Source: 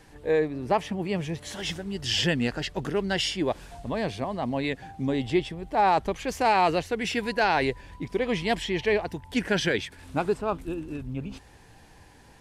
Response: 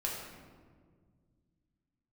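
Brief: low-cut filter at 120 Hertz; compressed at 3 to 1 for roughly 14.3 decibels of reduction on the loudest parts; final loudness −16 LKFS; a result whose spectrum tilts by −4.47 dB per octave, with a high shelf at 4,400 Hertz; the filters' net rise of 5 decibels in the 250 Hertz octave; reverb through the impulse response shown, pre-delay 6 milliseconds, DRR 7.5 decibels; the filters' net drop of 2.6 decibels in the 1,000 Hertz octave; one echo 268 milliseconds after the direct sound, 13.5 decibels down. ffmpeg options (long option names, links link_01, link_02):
-filter_complex "[0:a]highpass=120,equalizer=frequency=250:width_type=o:gain=7,equalizer=frequency=1000:width_type=o:gain=-4,highshelf=frequency=4400:gain=-3,acompressor=threshold=-36dB:ratio=3,aecho=1:1:268:0.211,asplit=2[link_01][link_02];[1:a]atrim=start_sample=2205,adelay=6[link_03];[link_02][link_03]afir=irnorm=-1:irlink=0,volume=-11dB[link_04];[link_01][link_04]amix=inputs=2:normalize=0,volume=20dB"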